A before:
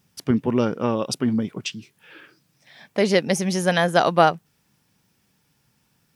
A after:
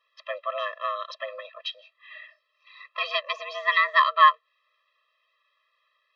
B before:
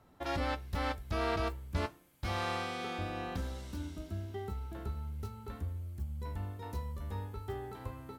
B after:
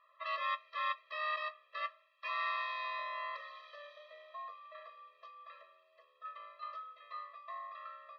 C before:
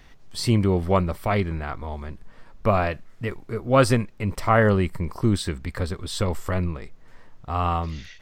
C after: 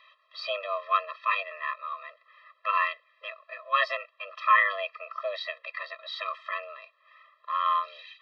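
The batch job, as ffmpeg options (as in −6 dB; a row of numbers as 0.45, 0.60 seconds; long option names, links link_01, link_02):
-af "highpass=frequency=450:width_type=q:width=0.5412,highpass=frequency=450:width_type=q:width=1.307,lowpass=frequency=3600:width_type=q:width=0.5176,lowpass=frequency=3600:width_type=q:width=0.7071,lowpass=frequency=3600:width_type=q:width=1.932,afreqshift=290,afftfilt=real='re*eq(mod(floor(b*sr/1024/340),2),1)':imag='im*eq(mod(floor(b*sr/1024/340),2),1)':win_size=1024:overlap=0.75,volume=4.5dB"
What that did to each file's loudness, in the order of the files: −2.5, −2.0, −5.0 LU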